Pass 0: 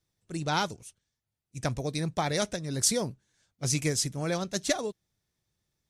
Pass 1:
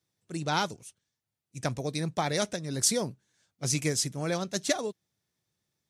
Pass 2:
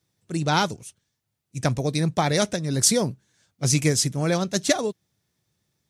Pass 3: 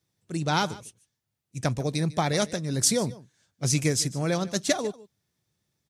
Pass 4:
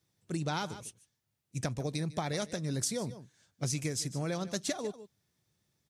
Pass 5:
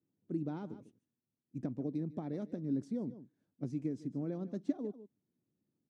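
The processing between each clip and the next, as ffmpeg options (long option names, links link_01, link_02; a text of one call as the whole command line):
ffmpeg -i in.wav -af "highpass=110" out.wav
ffmpeg -i in.wav -af "lowshelf=frequency=200:gain=5.5,volume=6dB" out.wav
ffmpeg -i in.wav -af "aecho=1:1:149:0.106,volume=-3.5dB" out.wav
ffmpeg -i in.wav -af "acompressor=threshold=-31dB:ratio=6" out.wav
ffmpeg -i in.wav -af "bandpass=frequency=270:width_type=q:width=3.1:csg=0,volume=5dB" out.wav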